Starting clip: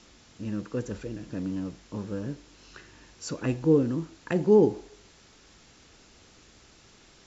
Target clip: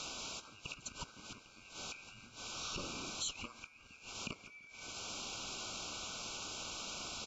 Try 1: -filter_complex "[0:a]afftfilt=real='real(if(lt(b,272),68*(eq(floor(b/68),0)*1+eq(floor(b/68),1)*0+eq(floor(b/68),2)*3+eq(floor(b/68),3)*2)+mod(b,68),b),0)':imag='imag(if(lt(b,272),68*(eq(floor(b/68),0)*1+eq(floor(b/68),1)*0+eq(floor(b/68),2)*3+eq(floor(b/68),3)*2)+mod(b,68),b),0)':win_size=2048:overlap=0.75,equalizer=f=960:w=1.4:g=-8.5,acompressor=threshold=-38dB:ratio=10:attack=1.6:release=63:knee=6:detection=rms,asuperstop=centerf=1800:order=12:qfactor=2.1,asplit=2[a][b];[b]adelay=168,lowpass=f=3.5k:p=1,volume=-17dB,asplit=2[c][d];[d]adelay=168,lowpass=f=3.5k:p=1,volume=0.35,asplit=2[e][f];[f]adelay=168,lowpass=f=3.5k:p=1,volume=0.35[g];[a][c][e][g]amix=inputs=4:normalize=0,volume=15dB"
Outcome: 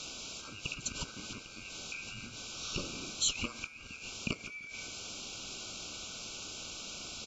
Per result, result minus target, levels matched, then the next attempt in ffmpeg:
compressor: peak gain reduction -11.5 dB; 1000 Hz band -6.5 dB
-filter_complex "[0:a]afftfilt=real='real(if(lt(b,272),68*(eq(floor(b/68),0)*1+eq(floor(b/68),1)*0+eq(floor(b/68),2)*3+eq(floor(b/68),3)*2)+mod(b,68),b),0)':imag='imag(if(lt(b,272),68*(eq(floor(b/68),0)*1+eq(floor(b/68),1)*0+eq(floor(b/68),2)*3+eq(floor(b/68),3)*2)+mod(b,68),b),0)':win_size=2048:overlap=0.75,equalizer=f=960:w=1.4:g=-8.5,acompressor=threshold=-49dB:ratio=10:attack=1.6:release=63:knee=6:detection=rms,asuperstop=centerf=1800:order=12:qfactor=2.1,asplit=2[a][b];[b]adelay=168,lowpass=f=3.5k:p=1,volume=-17dB,asplit=2[c][d];[d]adelay=168,lowpass=f=3.5k:p=1,volume=0.35,asplit=2[e][f];[f]adelay=168,lowpass=f=3.5k:p=1,volume=0.35[g];[a][c][e][g]amix=inputs=4:normalize=0,volume=15dB"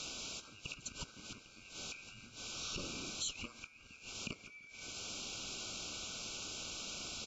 1000 Hz band -5.5 dB
-filter_complex "[0:a]afftfilt=real='real(if(lt(b,272),68*(eq(floor(b/68),0)*1+eq(floor(b/68),1)*0+eq(floor(b/68),2)*3+eq(floor(b/68),3)*2)+mod(b,68),b),0)':imag='imag(if(lt(b,272),68*(eq(floor(b/68),0)*1+eq(floor(b/68),1)*0+eq(floor(b/68),2)*3+eq(floor(b/68),3)*2)+mod(b,68),b),0)':win_size=2048:overlap=0.75,acompressor=threshold=-49dB:ratio=10:attack=1.6:release=63:knee=6:detection=rms,asuperstop=centerf=1800:order=12:qfactor=2.1,asplit=2[a][b];[b]adelay=168,lowpass=f=3.5k:p=1,volume=-17dB,asplit=2[c][d];[d]adelay=168,lowpass=f=3.5k:p=1,volume=0.35,asplit=2[e][f];[f]adelay=168,lowpass=f=3.5k:p=1,volume=0.35[g];[a][c][e][g]amix=inputs=4:normalize=0,volume=15dB"

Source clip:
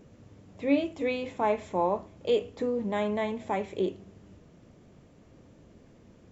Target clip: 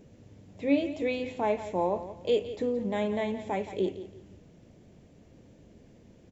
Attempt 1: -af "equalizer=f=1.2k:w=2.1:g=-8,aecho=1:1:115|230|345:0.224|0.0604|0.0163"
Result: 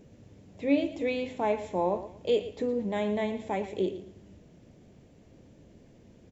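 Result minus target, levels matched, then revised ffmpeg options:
echo 56 ms early
-af "equalizer=f=1.2k:w=2.1:g=-8,aecho=1:1:171|342|513:0.224|0.0604|0.0163"

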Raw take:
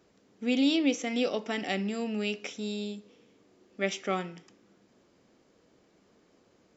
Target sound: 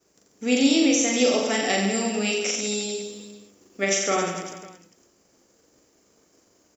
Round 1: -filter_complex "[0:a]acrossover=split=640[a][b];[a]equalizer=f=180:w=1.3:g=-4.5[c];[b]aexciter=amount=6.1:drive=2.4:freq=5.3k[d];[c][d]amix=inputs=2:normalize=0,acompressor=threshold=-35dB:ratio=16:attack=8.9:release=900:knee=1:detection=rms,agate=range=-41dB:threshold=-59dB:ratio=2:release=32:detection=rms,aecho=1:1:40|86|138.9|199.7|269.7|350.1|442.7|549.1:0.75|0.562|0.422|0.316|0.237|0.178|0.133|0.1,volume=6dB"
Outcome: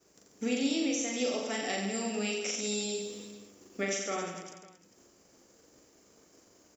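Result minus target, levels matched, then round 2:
compressor: peak gain reduction +11.5 dB
-filter_complex "[0:a]acrossover=split=640[a][b];[a]equalizer=f=180:w=1.3:g=-4.5[c];[b]aexciter=amount=6.1:drive=2.4:freq=5.3k[d];[c][d]amix=inputs=2:normalize=0,acompressor=threshold=-23dB:ratio=16:attack=8.9:release=900:knee=1:detection=rms,agate=range=-41dB:threshold=-59dB:ratio=2:release=32:detection=rms,aecho=1:1:40|86|138.9|199.7|269.7|350.1|442.7|549.1:0.75|0.562|0.422|0.316|0.237|0.178|0.133|0.1,volume=6dB"

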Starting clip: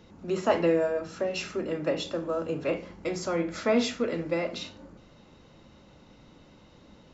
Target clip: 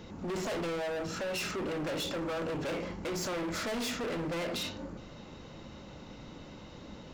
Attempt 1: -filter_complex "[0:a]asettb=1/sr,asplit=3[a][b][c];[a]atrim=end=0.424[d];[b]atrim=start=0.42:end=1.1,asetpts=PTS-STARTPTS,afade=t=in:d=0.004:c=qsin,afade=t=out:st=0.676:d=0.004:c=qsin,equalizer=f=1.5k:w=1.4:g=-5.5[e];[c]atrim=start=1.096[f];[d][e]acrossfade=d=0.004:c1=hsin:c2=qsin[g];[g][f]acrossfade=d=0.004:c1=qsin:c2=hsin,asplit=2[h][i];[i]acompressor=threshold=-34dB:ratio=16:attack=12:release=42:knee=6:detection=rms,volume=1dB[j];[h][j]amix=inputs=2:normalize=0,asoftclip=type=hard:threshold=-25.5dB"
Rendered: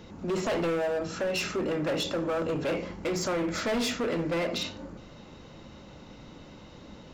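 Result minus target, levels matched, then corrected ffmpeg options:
hard clip: distortion -4 dB
-filter_complex "[0:a]asettb=1/sr,asplit=3[a][b][c];[a]atrim=end=0.424[d];[b]atrim=start=0.42:end=1.1,asetpts=PTS-STARTPTS,afade=t=in:d=0.004:c=qsin,afade=t=out:st=0.676:d=0.004:c=qsin,equalizer=f=1.5k:w=1.4:g=-5.5[e];[c]atrim=start=1.096[f];[d][e]acrossfade=d=0.004:c1=hsin:c2=qsin[g];[g][f]acrossfade=d=0.004:c1=qsin:c2=hsin,asplit=2[h][i];[i]acompressor=threshold=-34dB:ratio=16:attack=12:release=42:knee=6:detection=rms,volume=1dB[j];[h][j]amix=inputs=2:normalize=0,asoftclip=type=hard:threshold=-33dB"

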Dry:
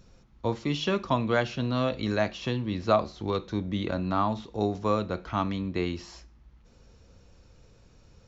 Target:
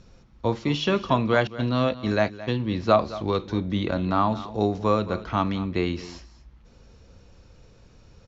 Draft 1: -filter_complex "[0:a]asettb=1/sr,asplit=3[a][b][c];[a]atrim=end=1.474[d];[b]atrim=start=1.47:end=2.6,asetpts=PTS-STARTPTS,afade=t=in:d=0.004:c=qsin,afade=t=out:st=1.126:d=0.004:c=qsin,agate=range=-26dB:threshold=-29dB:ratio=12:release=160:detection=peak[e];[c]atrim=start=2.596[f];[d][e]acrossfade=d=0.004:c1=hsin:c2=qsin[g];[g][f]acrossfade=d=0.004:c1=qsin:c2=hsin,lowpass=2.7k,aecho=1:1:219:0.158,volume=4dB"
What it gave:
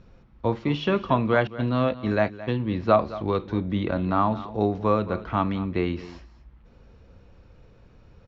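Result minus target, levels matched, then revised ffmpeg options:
8000 Hz band -13.0 dB
-filter_complex "[0:a]asettb=1/sr,asplit=3[a][b][c];[a]atrim=end=1.474[d];[b]atrim=start=1.47:end=2.6,asetpts=PTS-STARTPTS,afade=t=in:d=0.004:c=qsin,afade=t=out:st=1.126:d=0.004:c=qsin,agate=range=-26dB:threshold=-29dB:ratio=12:release=160:detection=peak[e];[c]atrim=start=2.596[f];[d][e]acrossfade=d=0.004:c1=hsin:c2=qsin[g];[g][f]acrossfade=d=0.004:c1=qsin:c2=hsin,lowpass=6.8k,aecho=1:1:219:0.158,volume=4dB"

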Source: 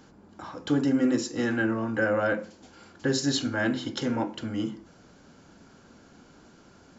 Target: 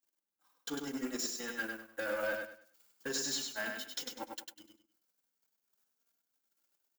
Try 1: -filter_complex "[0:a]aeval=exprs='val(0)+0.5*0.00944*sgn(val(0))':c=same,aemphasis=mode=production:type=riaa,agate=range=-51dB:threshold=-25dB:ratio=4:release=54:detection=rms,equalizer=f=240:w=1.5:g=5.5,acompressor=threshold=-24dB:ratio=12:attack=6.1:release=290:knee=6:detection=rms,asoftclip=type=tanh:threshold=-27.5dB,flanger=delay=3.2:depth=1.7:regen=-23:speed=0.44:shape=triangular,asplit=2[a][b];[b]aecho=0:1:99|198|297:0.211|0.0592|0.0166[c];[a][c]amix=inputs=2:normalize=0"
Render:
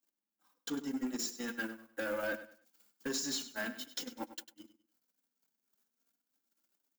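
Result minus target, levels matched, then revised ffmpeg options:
echo-to-direct -9 dB; 250 Hz band +4.0 dB
-filter_complex "[0:a]aeval=exprs='val(0)+0.5*0.00944*sgn(val(0))':c=same,aemphasis=mode=production:type=riaa,agate=range=-51dB:threshold=-25dB:ratio=4:release=54:detection=rms,equalizer=f=240:w=1.5:g=-3,acompressor=threshold=-24dB:ratio=12:attack=6.1:release=290:knee=6:detection=rms,asoftclip=type=tanh:threshold=-27.5dB,flanger=delay=3.2:depth=1.7:regen=-23:speed=0.44:shape=triangular,asplit=2[a][b];[b]aecho=0:1:99|198|297|396:0.596|0.167|0.0467|0.0131[c];[a][c]amix=inputs=2:normalize=0"

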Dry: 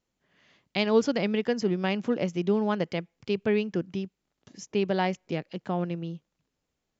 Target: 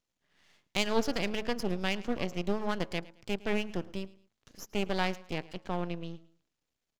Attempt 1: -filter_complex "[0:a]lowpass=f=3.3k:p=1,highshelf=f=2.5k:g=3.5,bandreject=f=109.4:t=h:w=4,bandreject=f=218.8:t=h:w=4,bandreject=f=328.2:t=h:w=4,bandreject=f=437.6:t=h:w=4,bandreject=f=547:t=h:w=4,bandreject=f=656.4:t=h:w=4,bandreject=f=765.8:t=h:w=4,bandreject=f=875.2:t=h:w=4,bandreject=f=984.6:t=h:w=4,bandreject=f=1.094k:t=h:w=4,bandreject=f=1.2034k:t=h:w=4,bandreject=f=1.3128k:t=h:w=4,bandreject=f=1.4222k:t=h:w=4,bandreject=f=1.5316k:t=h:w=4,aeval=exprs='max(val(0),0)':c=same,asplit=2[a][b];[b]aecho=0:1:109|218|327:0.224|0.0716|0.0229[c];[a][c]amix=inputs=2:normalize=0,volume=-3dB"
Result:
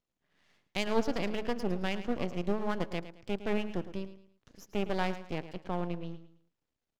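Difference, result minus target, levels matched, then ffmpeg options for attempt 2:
echo-to-direct +7.5 dB; 4000 Hz band -4.0 dB
-filter_complex "[0:a]lowpass=f=3.3k:p=1,highshelf=f=2.5k:g=13,bandreject=f=109.4:t=h:w=4,bandreject=f=218.8:t=h:w=4,bandreject=f=328.2:t=h:w=4,bandreject=f=437.6:t=h:w=4,bandreject=f=547:t=h:w=4,bandreject=f=656.4:t=h:w=4,bandreject=f=765.8:t=h:w=4,bandreject=f=875.2:t=h:w=4,bandreject=f=984.6:t=h:w=4,bandreject=f=1.094k:t=h:w=4,bandreject=f=1.2034k:t=h:w=4,bandreject=f=1.3128k:t=h:w=4,bandreject=f=1.4222k:t=h:w=4,bandreject=f=1.5316k:t=h:w=4,aeval=exprs='max(val(0),0)':c=same,asplit=2[a][b];[b]aecho=0:1:109|218:0.0944|0.0302[c];[a][c]amix=inputs=2:normalize=0,volume=-3dB"

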